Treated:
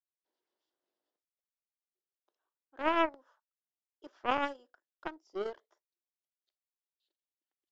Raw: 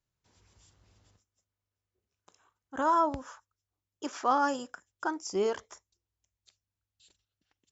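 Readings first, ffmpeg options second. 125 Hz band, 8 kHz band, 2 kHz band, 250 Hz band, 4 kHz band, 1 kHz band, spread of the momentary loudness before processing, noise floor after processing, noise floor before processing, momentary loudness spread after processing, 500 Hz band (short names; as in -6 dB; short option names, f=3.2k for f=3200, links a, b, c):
under -10 dB, n/a, 0.0 dB, -4.5 dB, 0.0 dB, -6.5 dB, 16 LU, under -85 dBFS, under -85 dBFS, 16 LU, -4.5 dB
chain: -af "highpass=f=310:w=0.5412,highpass=f=310:w=1.3066,equalizer=f=340:t=q:w=4:g=6,equalizer=f=610:t=q:w=4:g=5,equalizer=f=1.2k:t=q:w=4:g=-3,equalizer=f=2.4k:t=q:w=4:g=-8,lowpass=f=4.4k:w=0.5412,lowpass=f=4.4k:w=1.3066,aeval=exprs='0.2*(cos(1*acos(clip(val(0)/0.2,-1,1)))-cos(1*PI/2))+0.0562*(cos(3*acos(clip(val(0)/0.2,-1,1)))-cos(3*PI/2))+0.002*(cos(4*acos(clip(val(0)/0.2,-1,1)))-cos(4*PI/2))+0.00141*(cos(7*acos(clip(val(0)/0.2,-1,1)))-cos(7*PI/2))':c=same"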